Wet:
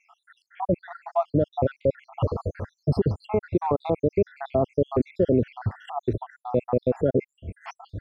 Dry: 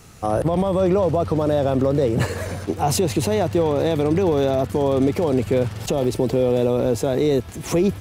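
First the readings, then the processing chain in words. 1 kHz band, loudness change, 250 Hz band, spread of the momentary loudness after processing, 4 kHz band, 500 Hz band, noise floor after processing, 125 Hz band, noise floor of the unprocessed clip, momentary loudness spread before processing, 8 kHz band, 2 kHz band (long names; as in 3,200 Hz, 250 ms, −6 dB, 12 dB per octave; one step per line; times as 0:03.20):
−5.0 dB, −6.0 dB, −7.0 dB, 10 LU, below −15 dB, −6.5 dB, −82 dBFS, −5.0 dB, −35 dBFS, 5 LU, below −30 dB, −10.0 dB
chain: time-frequency cells dropped at random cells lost 78%
low-pass filter 1,600 Hz 12 dB per octave
brickwall limiter −15 dBFS, peak gain reduction 5.5 dB
level +3.5 dB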